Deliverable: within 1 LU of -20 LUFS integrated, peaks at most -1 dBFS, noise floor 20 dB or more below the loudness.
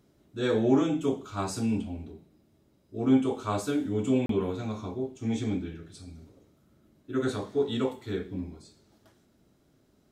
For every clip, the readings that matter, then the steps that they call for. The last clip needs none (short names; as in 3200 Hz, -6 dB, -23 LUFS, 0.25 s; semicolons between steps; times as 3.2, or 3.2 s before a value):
dropouts 1; longest dropout 33 ms; loudness -29.5 LUFS; peak -12.0 dBFS; loudness target -20.0 LUFS
-> interpolate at 4.26, 33 ms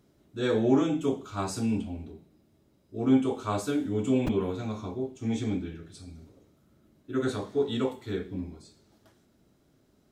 dropouts 0; loudness -29.5 LUFS; peak -12.0 dBFS; loudness target -20.0 LUFS
-> gain +9.5 dB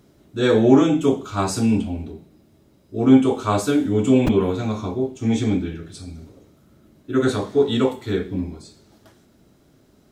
loudness -20.0 LUFS; peak -2.5 dBFS; noise floor -56 dBFS